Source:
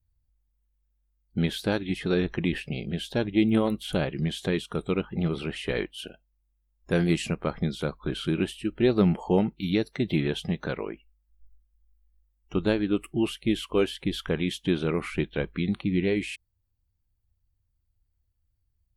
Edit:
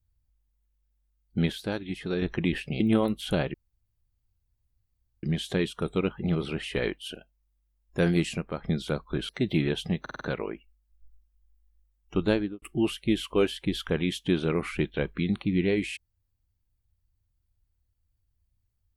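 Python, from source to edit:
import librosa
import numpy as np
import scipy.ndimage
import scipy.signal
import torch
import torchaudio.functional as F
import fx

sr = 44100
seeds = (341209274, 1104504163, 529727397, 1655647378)

y = fx.studio_fade_out(x, sr, start_s=12.73, length_s=0.28)
y = fx.edit(y, sr, fx.clip_gain(start_s=1.52, length_s=0.7, db=-5.0),
    fx.cut(start_s=2.8, length_s=0.62),
    fx.insert_room_tone(at_s=4.16, length_s=1.69),
    fx.fade_out_to(start_s=7.02, length_s=0.55, floor_db=-7.0),
    fx.cut(start_s=8.22, length_s=1.66),
    fx.stutter(start_s=10.6, slice_s=0.05, count=5), tone=tone)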